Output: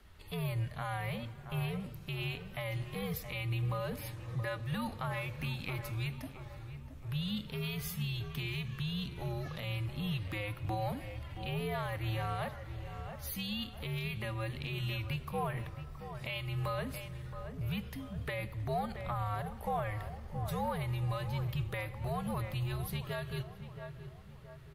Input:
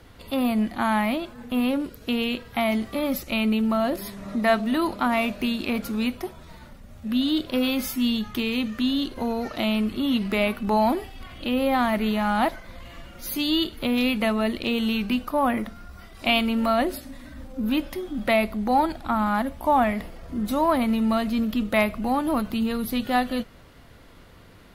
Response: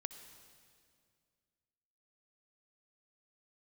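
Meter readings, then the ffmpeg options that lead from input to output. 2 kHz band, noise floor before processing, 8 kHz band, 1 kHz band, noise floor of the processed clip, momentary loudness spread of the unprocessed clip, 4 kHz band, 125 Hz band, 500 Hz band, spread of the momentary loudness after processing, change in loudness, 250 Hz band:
-12.5 dB, -48 dBFS, -10.5 dB, -15.0 dB, -49 dBFS, 9 LU, -13.0 dB, +4.0 dB, -15.0 dB, 8 LU, -13.5 dB, -19.0 dB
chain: -filter_complex "[0:a]equalizer=f=500:w=0.36:g=-8.5,afreqshift=-100,asplit=2[a][b];[b]adelay=672,lowpass=f=1.4k:p=1,volume=-11dB,asplit=2[c][d];[d]adelay=672,lowpass=f=1.4k:p=1,volume=0.49,asplit=2[e][f];[f]adelay=672,lowpass=f=1.4k:p=1,volume=0.49,asplit=2[g][h];[h]adelay=672,lowpass=f=1.4k:p=1,volume=0.49,asplit=2[i][j];[j]adelay=672,lowpass=f=1.4k:p=1,volume=0.49[k];[a][c][e][g][i][k]amix=inputs=6:normalize=0,alimiter=limit=-20dB:level=0:latency=1:release=209,asplit=2[l][m];[1:a]atrim=start_sample=2205,lowpass=3.2k[n];[m][n]afir=irnorm=-1:irlink=0,volume=-2dB[o];[l][o]amix=inputs=2:normalize=0,volume=-9dB"

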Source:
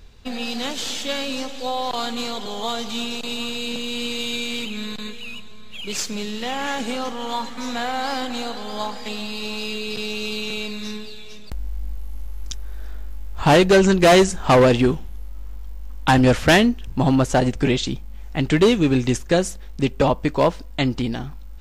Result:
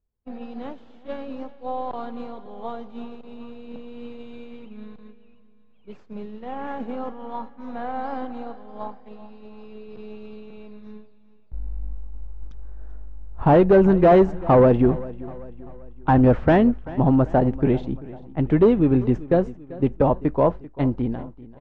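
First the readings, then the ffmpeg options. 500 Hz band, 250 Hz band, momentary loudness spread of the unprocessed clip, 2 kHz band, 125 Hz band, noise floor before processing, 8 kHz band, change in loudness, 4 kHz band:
-0.5 dB, -0.5 dB, 20 LU, -11.5 dB, 0.0 dB, -34 dBFS, under -35 dB, +1.0 dB, under -20 dB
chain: -filter_complex "[0:a]lowpass=1k,agate=range=-33dB:threshold=-22dB:ratio=3:detection=peak,asplit=2[a][b];[b]aecho=0:1:390|780|1170|1560:0.112|0.0527|0.0248|0.0116[c];[a][c]amix=inputs=2:normalize=0"

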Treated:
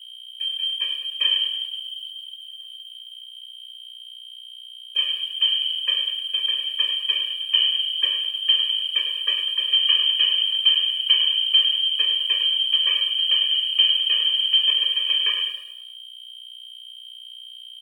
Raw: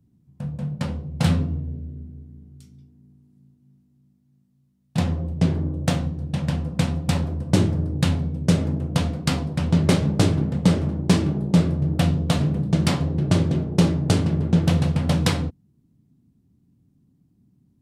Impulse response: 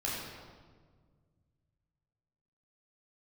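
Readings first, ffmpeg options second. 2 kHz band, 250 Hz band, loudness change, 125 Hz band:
+2.5 dB, under -40 dB, +3.5 dB, under -40 dB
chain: -filter_complex "[0:a]acrossover=split=2600[a][b];[b]acompressor=threshold=-43dB:ratio=4:attack=1:release=60[c];[a][c]amix=inputs=2:normalize=0,equalizer=f=2.2k:w=2.1:g=-6,acrossover=split=150[d][e];[d]acompressor=threshold=-33dB:ratio=6[f];[f][e]amix=inputs=2:normalize=0,asplit=7[g][h][i][j][k][l][m];[h]adelay=103,afreqshift=-43,volume=-8dB[n];[i]adelay=206,afreqshift=-86,volume=-14.2dB[o];[j]adelay=309,afreqshift=-129,volume=-20.4dB[p];[k]adelay=412,afreqshift=-172,volume=-26.6dB[q];[l]adelay=515,afreqshift=-215,volume=-32.8dB[r];[m]adelay=618,afreqshift=-258,volume=-39dB[s];[g][n][o][p][q][r][s]amix=inputs=7:normalize=0,aeval=exprs='val(0)+0.0126*(sin(2*PI*60*n/s)+sin(2*PI*2*60*n/s)/2+sin(2*PI*3*60*n/s)/3+sin(2*PI*4*60*n/s)/4+sin(2*PI*5*60*n/s)/5)':c=same,asplit=2[t][u];[u]asoftclip=type=tanh:threshold=-23.5dB,volume=-3dB[v];[t][v]amix=inputs=2:normalize=0,lowpass=f=2.8k:t=q:w=0.5098,lowpass=f=2.8k:t=q:w=0.6013,lowpass=f=2.8k:t=q:w=0.9,lowpass=f=2.8k:t=q:w=2.563,afreqshift=-3300,aeval=exprs='sgn(val(0))*max(abs(val(0))-0.00398,0)':c=same,afftfilt=real='re*eq(mod(floor(b*sr/1024/320),2),1)':imag='im*eq(mod(floor(b*sr/1024/320),2),1)':win_size=1024:overlap=0.75"

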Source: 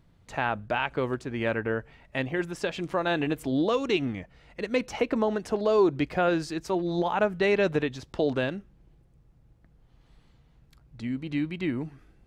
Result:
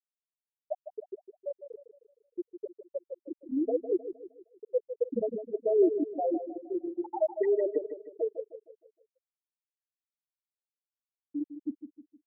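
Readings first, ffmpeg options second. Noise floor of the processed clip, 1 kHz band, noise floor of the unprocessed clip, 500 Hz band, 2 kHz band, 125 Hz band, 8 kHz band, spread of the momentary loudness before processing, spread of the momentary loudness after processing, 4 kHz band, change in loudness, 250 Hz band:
under -85 dBFS, -12.0 dB, -61 dBFS, -3.0 dB, under -25 dB, under -25 dB, under -30 dB, 10 LU, 18 LU, under -40 dB, -4.5 dB, -6.5 dB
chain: -filter_complex "[0:a]asplit=2[a][b];[b]adelay=159,lowpass=f=1.3k:p=1,volume=-6.5dB,asplit=2[c][d];[d]adelay=159,lowpass=f=1.3k:p=1,volume=0.52,asplit=2[e][f];[f]adelay=159,lowpass=f=1.3k:p=1,volume=0.52,asplit=2[g][h];[h]adelay=159,lowpass=f=1.3k:p=1,volume=0.52,asplit=2[i][j];[j]adelay=159,lowpass=f=1.3k:p=1,volume=0.52,asplit=2[k][l];[l]adelay=159,lowpass=f=1.3k:p=1,volume=0.52[m];[c][e][g][i][k][m]amix=inputs=6:normalize=0[n];[a][n]amix=inputs=2:normalize=0,acrusher=bits=5:mix=0:aa=0.000001,lowshelf=f=110:t=q:w=3:g=8,afftfilt=real='re*gte(hypot(re,im),0.501)':imag='im*gte(hypot(re,im),0.501)':win_size=1024:overlap=0.75,asplit=2[o][p];[p]aecho=0:1:155|310|465|620|775:0.299|0.128|0.0552|0.0237|0.0102[q];[o][q]amix=inputs=2:normalize=0"

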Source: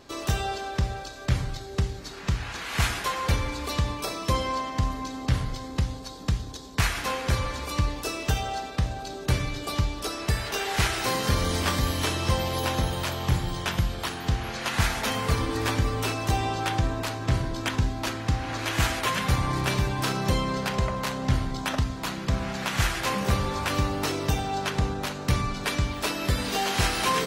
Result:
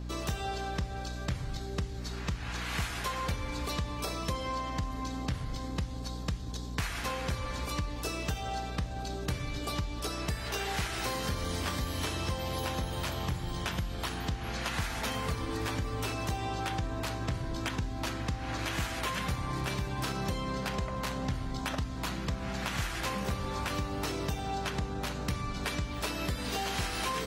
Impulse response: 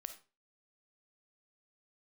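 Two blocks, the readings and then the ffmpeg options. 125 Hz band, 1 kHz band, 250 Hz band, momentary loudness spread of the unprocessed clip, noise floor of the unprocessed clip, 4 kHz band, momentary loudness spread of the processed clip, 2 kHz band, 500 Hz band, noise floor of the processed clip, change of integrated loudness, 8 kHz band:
-8.0 dB, -7.0 dB, -6.0 dB, 5 LU, -38 dBFS, -7.0 dB, 3 LU, -7.0 dB, -6.5 dB, -38 dBFS, -7.0 dB, -7.0 dB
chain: -af "aeval=exprs='val(0)+0.0178*(sin(2*PI*60*n/s)+sin(2*PI*2*60*n/s)/2+sin(2*PI*3*60*n/s)/3+sin(2*PI*4*60*n/s)/4+sin(2*PI*5*60*n/s)/5)':c=same,acompressor=threshold=-28dB:ratio=4,volume=-2.5dB"

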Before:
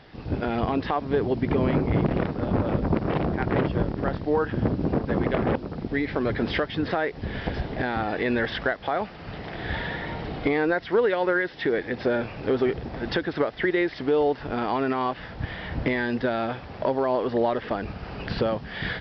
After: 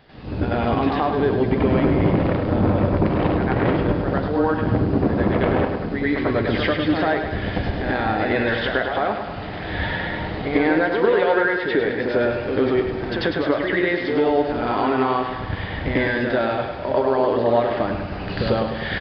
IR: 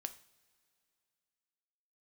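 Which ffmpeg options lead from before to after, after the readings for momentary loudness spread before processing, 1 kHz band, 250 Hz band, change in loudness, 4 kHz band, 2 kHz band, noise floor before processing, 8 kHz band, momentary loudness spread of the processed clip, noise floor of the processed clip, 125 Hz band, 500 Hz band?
8 LU, +5.5 dB, +5.5 dB, +5.0 dB, +5.0 dB, +5.5 dB, -41 dBFS, n/a, 7 LU, -30 dBFS, +5.0 dB, +5.0 dB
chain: -filter_complex "[0:a]aecho=1:1:103|206|309|412|515|618|721|824:0.422|0.253|0.152|0.0911|0.0547|0.0328|0.0197|0.0118,asplit=2[a][b];[1:a]atrim=start_sample=2205,adelay=93[c];[b][c]afir=irnorm=-1:irlink=0,volume=9dB[d];[a][d]amix=inputs=2:normalize=0,aresample=11025,aresample=44100,volume=-3dB"

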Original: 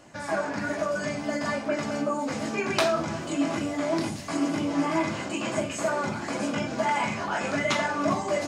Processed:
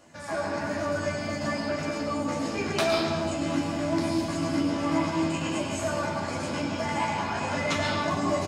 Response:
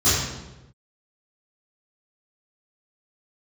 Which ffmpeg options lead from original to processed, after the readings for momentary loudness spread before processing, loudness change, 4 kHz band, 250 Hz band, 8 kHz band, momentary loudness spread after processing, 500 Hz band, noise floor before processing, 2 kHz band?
4 LU, -0.5 dB, +1.0 dB, 0.0 dB, -1.0 dB, 4 LU, -1.0 dB, -35 dBFS, -2.0 dB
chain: -filter_complex "[0:a]highshelf=f=7k:g=4,asplit=2[a][b];[b]adelay=12,volume=-5.5dB[c];[a][c]amix=inputs=2:normalize=0,asplit=2[d][e];[1:a]atrim=start_sample=2205,asetrate=32193,aresample=44100,adelay=96[f];[e][f]afir=irnorm=-1:irlink=0,volume=-21.5dB[g];[d][g]amix=inputs=2:normalize=0,volume=-5dB"

